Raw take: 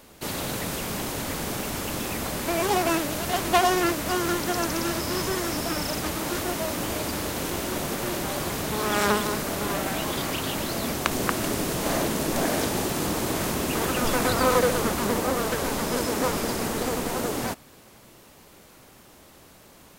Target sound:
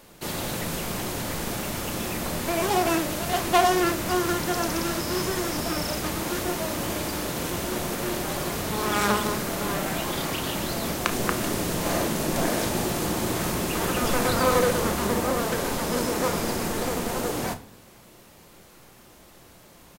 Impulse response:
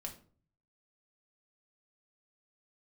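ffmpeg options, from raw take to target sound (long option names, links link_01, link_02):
-filter_complex "[0:a]asplit=2[link_01][link_02];[link_02]adelay=33,volume=-13dB[link_03];[link_01][link_03]amix=inputs=2:normalize=0,asplit=2[link_04][link_05];[1:a]atrim=start_sample=2205,asetrate=34398,aresample=44100[link_06];[link_05][link_06]afir=irnorm=-1:irlink=0,volume=-0.5dB[link_07];[link_04][link_07]amix=inputs=2:normalize=0,volume=-5dB"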